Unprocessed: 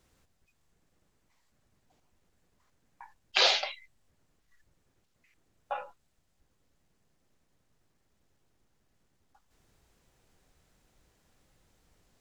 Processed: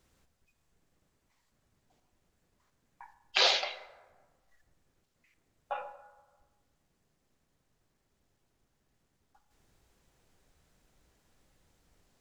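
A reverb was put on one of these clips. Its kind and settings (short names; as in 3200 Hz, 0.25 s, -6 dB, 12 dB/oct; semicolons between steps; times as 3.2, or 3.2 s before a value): plate-style reverb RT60 1.4 s, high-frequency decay 0.45×, DRR 10.5 dB; gain -1.5 dB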